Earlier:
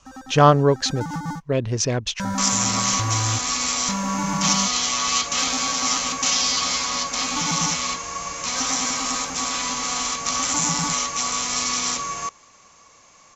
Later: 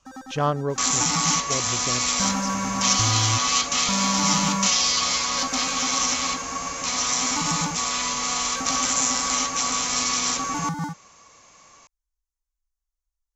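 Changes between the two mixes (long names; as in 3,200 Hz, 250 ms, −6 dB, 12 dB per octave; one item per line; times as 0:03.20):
speech −9.5 dB
second sound: entry −1.60 s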